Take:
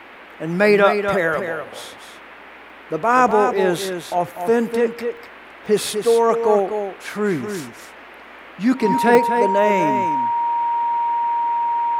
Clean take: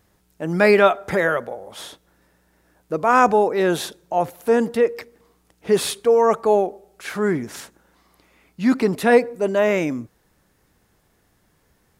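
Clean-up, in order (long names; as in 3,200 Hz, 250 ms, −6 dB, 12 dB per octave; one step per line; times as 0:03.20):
notch filter 940 Hz, Q 30
repair the gap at 0:02.70/0:03.31/0:05.17/0:05.66/0:09.15, 1.4 ms
noise reduction from a noise print 22 dB
echo removal 247 ms −7.5 dB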